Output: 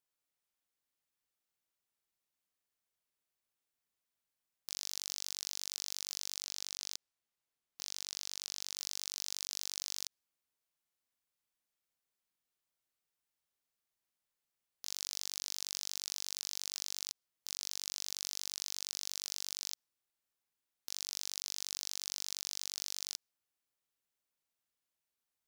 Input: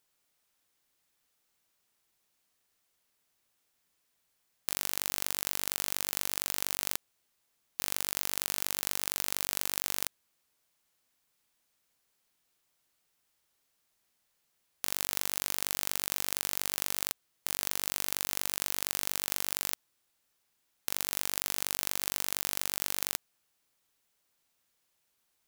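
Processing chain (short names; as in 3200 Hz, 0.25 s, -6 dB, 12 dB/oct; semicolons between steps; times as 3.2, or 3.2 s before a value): dynamic EQ 5200 Hz, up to +6 dB, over -55 dBFS, Q 1.8; sample leveller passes 5; limiter -14.5 dBFS, peak gain reduction 12.5 dB; 6.44–8.76 high shelf 9100 Hz -6 dB; gain -3.5 dB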